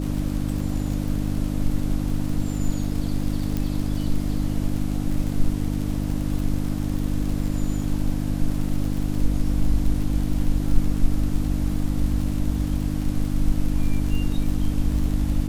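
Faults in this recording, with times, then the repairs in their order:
crackle 52/s -28 dBFS
hum 50 Hz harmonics 6 -26 dBFS
3.57 pop -13 dBFS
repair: de-click; de-hum 50 Hz, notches 6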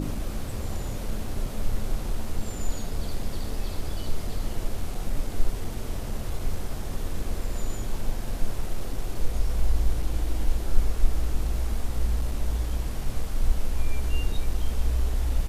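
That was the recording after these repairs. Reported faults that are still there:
none

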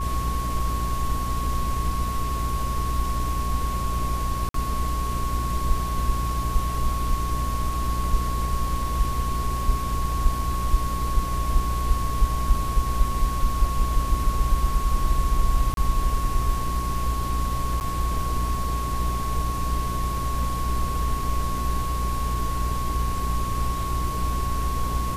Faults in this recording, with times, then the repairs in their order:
hum 60 Hz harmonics 7 -28 dBFS
tone 1100 Hz -29 dBFS
4.49–4.54 gap 53 ms
15.74–15.77 gap 32 ms
17.8–17.81 gap 9.4 ms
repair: notch 1100 Hz, Q 30; de-hum 60 Hz, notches 7; interpolate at 4.49, 53 ms; interpolate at 15.74, 32 ms; interpolate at 17.8, 9.4 ms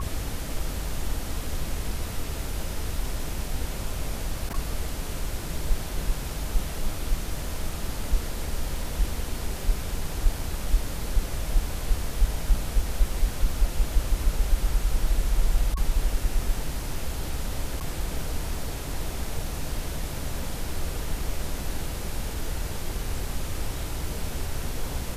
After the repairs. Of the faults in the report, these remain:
none

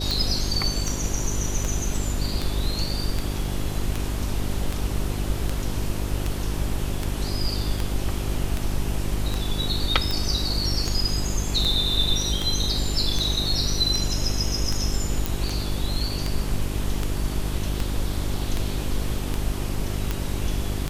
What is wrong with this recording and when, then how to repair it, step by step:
hum 50 Hz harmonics 8 -29 dBFS
tick 78 rpm
15.26 pop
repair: de-click; de-hum 50 Hz, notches 8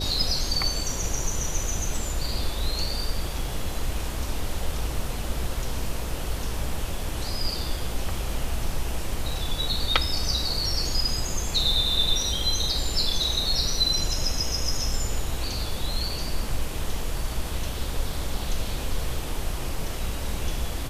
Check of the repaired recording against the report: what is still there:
none

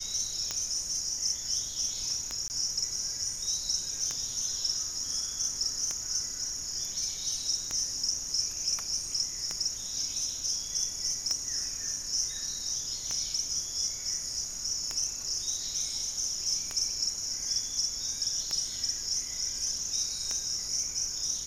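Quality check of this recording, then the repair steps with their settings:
tick 33 1/3 rpm -17 dBFS
2.48–2.5 gap 19 ms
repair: de-click; interpolate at 2.48, 19 ms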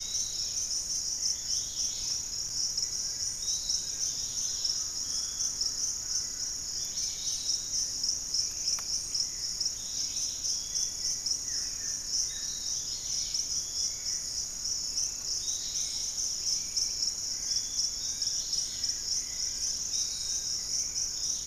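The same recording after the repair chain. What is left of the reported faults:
none

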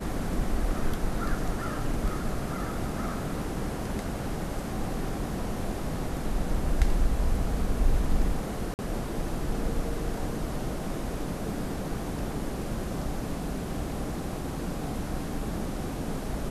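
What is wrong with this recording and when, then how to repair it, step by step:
8.74–8.79 gap 49 ms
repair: interpolate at 8.74, 49 ms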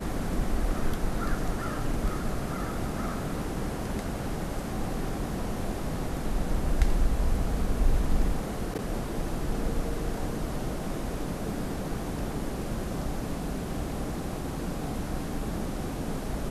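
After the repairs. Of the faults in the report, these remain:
none

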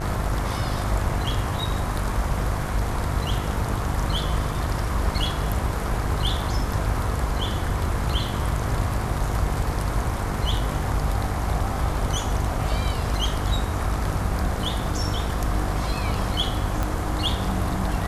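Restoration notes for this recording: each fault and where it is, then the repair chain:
buzz 50 Hz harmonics 26 -29 dBFS
16.83 pop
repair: de-click; de-hum 50 Hz, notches 26

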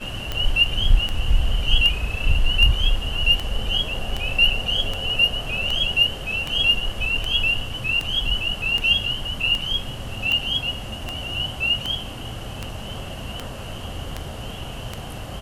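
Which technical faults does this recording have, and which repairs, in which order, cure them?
tick 78 rpm -11 dBFS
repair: de-click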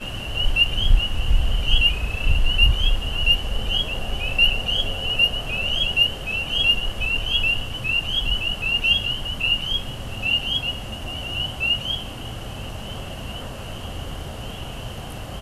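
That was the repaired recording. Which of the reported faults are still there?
none

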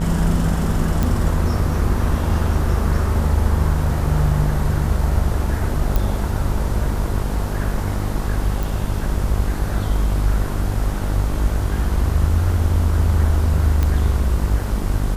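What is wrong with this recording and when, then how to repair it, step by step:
buzz 50 Hz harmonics 31 -23 dBFS
1.03 pop
5.96 pop
8.63 pop
13.83 pop -8 dBFS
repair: de-click; de-hum 50 Hz, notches 31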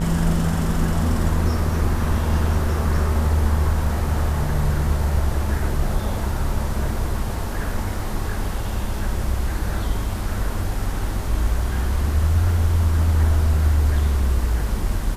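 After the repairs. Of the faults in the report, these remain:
none

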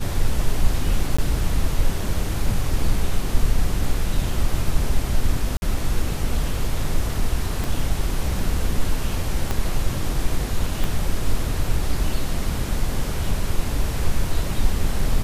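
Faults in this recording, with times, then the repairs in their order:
1.17–1.19 gap 15 ms
5.57–5.62 gap 51 ms
7.64 pop
9.51 pop -9 dBFS
10.84 pop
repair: de-click; interpolate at 1.17, 15 ms; interpolate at 5.57, 51 ms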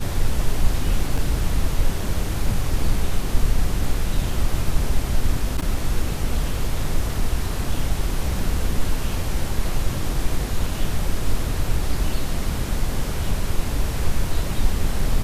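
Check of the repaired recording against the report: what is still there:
7.64 pop
9.51 pop
10.84 pop

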